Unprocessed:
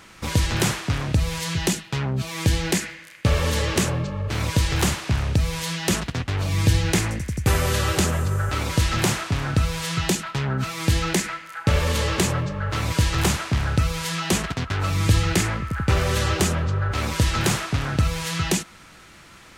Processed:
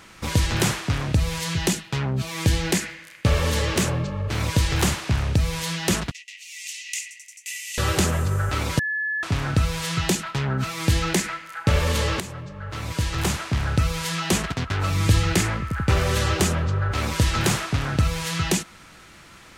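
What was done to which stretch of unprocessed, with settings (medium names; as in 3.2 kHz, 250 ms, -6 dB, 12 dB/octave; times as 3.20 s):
3.41–4.55 s: hard clipper -14.5 dBFS
6.11–7.78 s: rippled Chebyshev high-pass 1.9 kHz, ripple 9 dB
8.79–9.23 s: bleep 1.72 kHz -23 dBFS
12.20–13.86 s: fade in, from -14.5 dB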